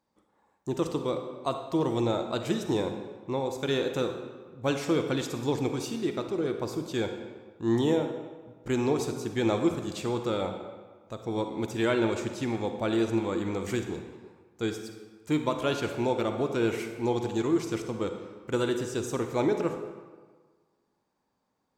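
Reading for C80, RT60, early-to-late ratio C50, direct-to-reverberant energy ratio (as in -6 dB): 8.5 dB, 1.5 s, 6.5 dB, 6.0 dB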